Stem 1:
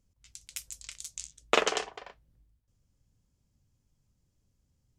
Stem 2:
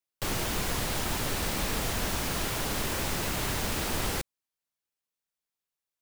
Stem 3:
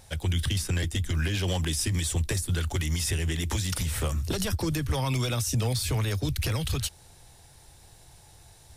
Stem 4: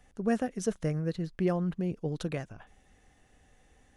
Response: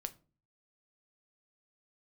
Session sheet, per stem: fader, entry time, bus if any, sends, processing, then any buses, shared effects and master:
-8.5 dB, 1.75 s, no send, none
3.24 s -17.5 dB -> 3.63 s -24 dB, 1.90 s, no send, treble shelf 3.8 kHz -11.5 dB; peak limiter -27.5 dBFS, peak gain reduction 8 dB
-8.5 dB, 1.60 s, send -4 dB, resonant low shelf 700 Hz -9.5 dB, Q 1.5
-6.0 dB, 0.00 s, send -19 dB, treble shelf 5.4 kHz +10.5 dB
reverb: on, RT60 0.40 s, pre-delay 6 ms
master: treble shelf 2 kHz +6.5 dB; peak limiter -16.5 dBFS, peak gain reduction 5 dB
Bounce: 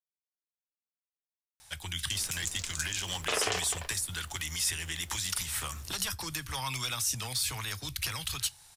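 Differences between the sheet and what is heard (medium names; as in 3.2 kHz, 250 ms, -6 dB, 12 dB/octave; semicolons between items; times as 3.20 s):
stem 1 -8.5 dB -> +2.0 dB; stem 4: muted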